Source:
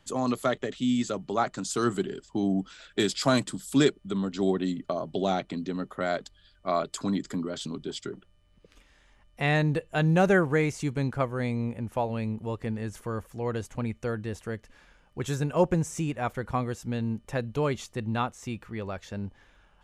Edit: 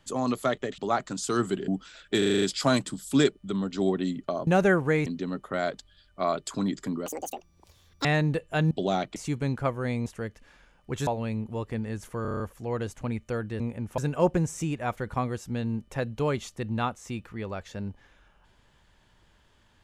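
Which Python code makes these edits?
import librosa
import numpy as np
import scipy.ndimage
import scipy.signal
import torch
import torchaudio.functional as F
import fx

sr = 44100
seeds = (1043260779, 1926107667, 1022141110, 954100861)

y = fx.edit(x, sr, fx.cut(start_s=0.78, length_s=0.47),
    fx.cut(start_s=2.15, length_s=0.38),
    fx.stutter(start_s=3.03, slice_s=0.04, count=7),
    fx.swap(start_s=5.08, length_s=0.45, other_s=10.12, other_length_s=0.59),
    fx.speed_span(start_s=7.53, length_s=1.93, speed=1.95),
    fx.swap(start_s=11.61, length_s=0.38, other_s=14.34, other_length_s=1.01),
    fx.stutter(start_s=13.14, slice_s=0.03, count=7), tone=tone)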